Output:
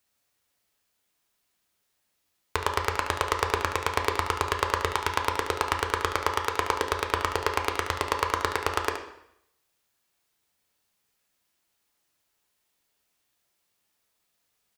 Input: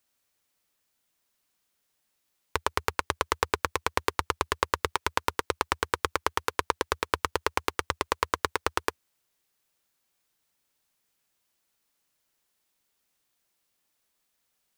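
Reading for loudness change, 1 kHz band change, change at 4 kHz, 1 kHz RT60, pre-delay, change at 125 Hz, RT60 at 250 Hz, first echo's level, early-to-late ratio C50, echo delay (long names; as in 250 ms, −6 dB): +2.0 dB, +2.5 dB, +1.5 dB, 0.75 s, 3 ms, +5.0 dB, 0.80 s, −9.5 dB, 6.0 dB, 72 ms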